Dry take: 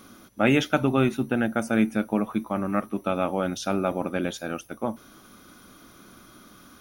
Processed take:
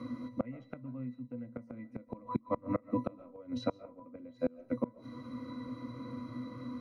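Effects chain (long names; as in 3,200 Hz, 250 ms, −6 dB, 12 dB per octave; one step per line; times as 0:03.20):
low-shelf EQ 76 Hz −5.5 dB
resonances in every octave B, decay 0.14 s
gate with flip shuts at −33 dBFS, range −31 dB
convolution reverb RT60 0.35 s, pre-delay 100 ms, DRR 20 dB
multiband upward and downward compressor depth 40%
level +15.5 dB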